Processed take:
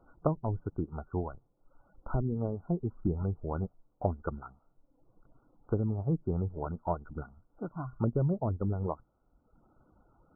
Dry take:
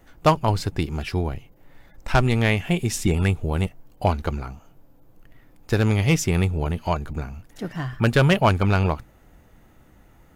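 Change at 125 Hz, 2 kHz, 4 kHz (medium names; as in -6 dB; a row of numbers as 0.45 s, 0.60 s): -11.0 dB, -28.0 dB, under -40 dB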